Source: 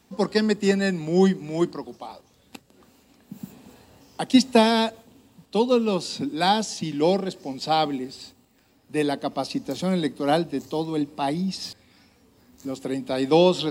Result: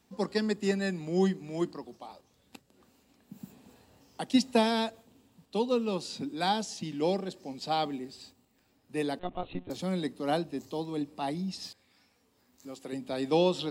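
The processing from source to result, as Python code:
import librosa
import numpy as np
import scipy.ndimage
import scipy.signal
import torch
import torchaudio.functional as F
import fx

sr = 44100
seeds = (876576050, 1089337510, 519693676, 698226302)

y = fx.lpc_monotone(x, sr, seeds[0], pitch_hz=180.0, order=16, at=(9.19, 9.7))
y = fx.low_shelf(y, sr, hz=360.0, db=-8.5, at=(11.67, 12.93))
y = y * librosa.db_to_amplitude(-8.0)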